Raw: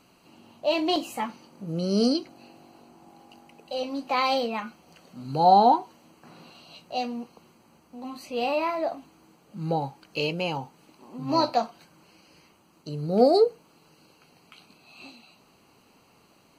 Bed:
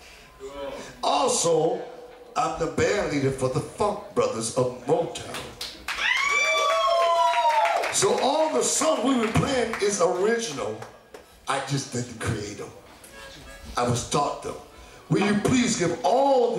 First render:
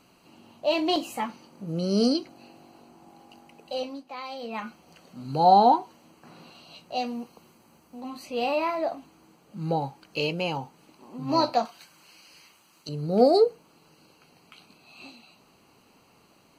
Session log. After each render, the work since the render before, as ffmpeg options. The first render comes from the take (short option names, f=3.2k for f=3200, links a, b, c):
-filter_complex "[0:a]asettb=1/sr,asplit=3[a][b][c];[a]atrim=end=7.064[d];[b]atrim=start=7.06:end=8.01,asetpts=PTS-STARTPTS,afade=t=in:d=0.004:c=qsin,afade=t=out:st=0.946:d=0.004:c=qsin,highshelf=f=8.6k:g=7[e];[c]atrim=start=8.006[f];[d][e]acrossfade=d=0.004:c1=hsin:c2=qsin[g];[g][f]acrossfade=d=0.004:c1=qsin:c2=hsin,asettb=1/sr,asplit=3[h][i][j];[h]atrim=end=11.654[k];[i]atrim=start=11.65:end=12.89,asetpts=PTS-STARTPTS,afade=t=in:d=0.004:c=qsin,afade=t=out:st=1.236:d=0.004:c=qsin,tiltshelf=f=970:g=-7.5[l];[j]atrim=start=12.886[m];[k][l]acrossfade=d=0.004:c1=hsin:c2=qsin[n];[n][m]acrossfade=d=0.004:c1=qsin:c2=hsin,asplit=3[o][p][q];[o]atrim=end=4.04,asetpts=PTS-STARTPTS,afade=t=out:st=3.77:d=0.27:silence=0.211349[r];[p]atrim=start=4.04:end=4.38,asetpts=PTS-STARTPTS,volume=-13.5dB[s];[q]atrim=start=4.38,asetpts=PTS-STARTPTS,afade=t=in:d=0.27:silence=0.211349[t];[r][s][t]concat=n=3:v=0:a=1"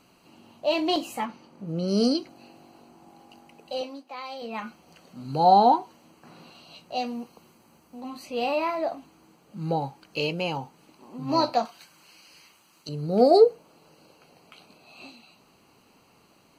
-filter_complex "[0:a]asettb=1/sr,asplit=3[a][b][c];[a]atrim=end=1.254[d];[b]atrim=start=1.25:end=1.88,asetpts=PTS-STARTPTS,afade=t=in:d=0.004:c=qsin,afade=t=out:st=0.626:d=0.004:c=qsin,highshelf=f=5.5k:g=-9.5[e];[c]atrim=start=1.876[f];[d][e]acrossfade=d=0.004:c1=hsin:c2=qsin[g];[g][f]acrossfade=d=0.004:c1=qsin:c2=hsin,asettb=1/sr,asplit=3[h][i][j];[h]atrim=end=3.814[k];[i]atrim=start=3.81:end=4.42,asetpts=PTS-STARTPTS,afade=t=in:d=0.004:c=qsin,afade=t=out:st=0.606:d=0.004:c=qsin,highpass=260[l];[j]atrim=start=4.416[m];[k][l]acrossfade=d=0.004:c1=hsin:c2=qsin[n];[n][m]acrossfade=d=0.004:c1=qsin:c2=hsin,asettb=1/sr,asplit=3[o][p][q];[o]atrim=end=13.314[r];[p]atrim=start=13.31:end=15.06,asetpts=PTS-STARTPTS,afade=t=in:d=0.004:c=qsin,afade=t=out:st=1.746:d=0.004:c=qsin,equalizer=f=580:w=1.5:g=6.5[s];[q]atrim=start=15.056[t];[r][s]acrossfade=d=0.004:c1=hsin:c2=qsin[u];[u][t]acrossfade=d=0.004:c1=qsin:c2=hsin"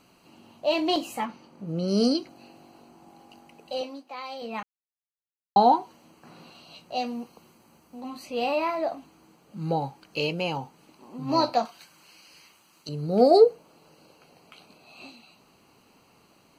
-filter_complex "[0:a]asplit=3[a][b][c];[a]atrim=end=4.63,asetpts=PTS-STARTPTS,afade=t=out:st=4.626:d=0.004:c=hsin[d];[b]atrim=start=4.63:end=5.56,asetpts=PTS-STARTPTS,volume=0[e];[c]atrim=start=5.56,asetpts=PTS-STARTPTS,afade=t=in:d=0.004:c=hsin[f];[d][e][f]concat=n=3:v=0:a=1"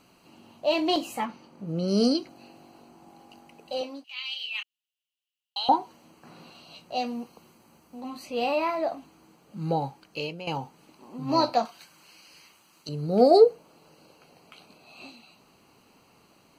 -filter_complex "[0:a]asettb=1/sr,asplit=3[a][b][c];[a]atrim=end=4.044[d];[b]atrim=start=4.04:end=5.69,asetpts=PTS-STARTPTS,afade=t=in:d=0.004:c=qsin,afade=t=out:st=1.646:d=0.004:c=qsin,highpass=f=2.9k:t=q:w=9.3[e];[c]atrim=start=5.686[f];[d][e]acrossfade=d=0.004:c1=hsin:c2=qsin[g];[g][f]acrossfade=d=0.004:c1=qsin:c2=hsin,asplit=2[h][i];[h]atrim=end=10.47,asetpts=PTS-STARTPTS,afade=t=out:st=9.88:d=0.59:silence=0.237137[j];[i]atrim=start=10.47,asetpts=PTS-STARTPTS,afade=t=in:d=0.004:c=hsin:silence=0.237137[k];[j][k]concat=n=2:v=0:a=1"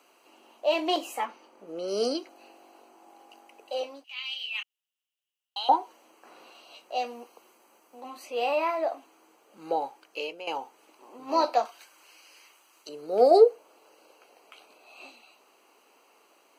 -af "highpass=f=360:w=0.5412,highpass=f=360:w=1.3066,equalizer=f=4.3k:w=4.7:g=-7"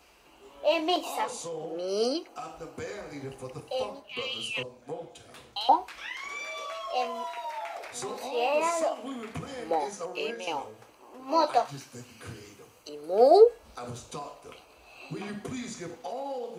-filter_complex "[1:a]volume=-15.5dB[a];[0:a][a]amix=inputs=2:normalize=0"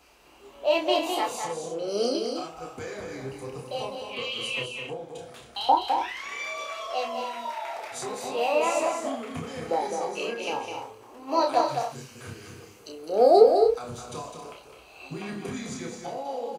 -filter_complex "[0:a]asplit=2[a][b];[b]adelay=30,volume=-4.5dB[c];[a][c]amix=inputs=2:normalize=0,aecho=1:1:207|271.1:0.501|0.316"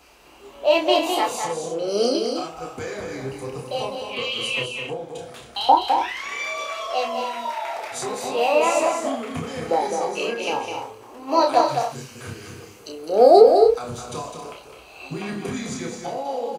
-af "volume=5.5dB,alimiter=limit=-1dB:level=0:latency=1"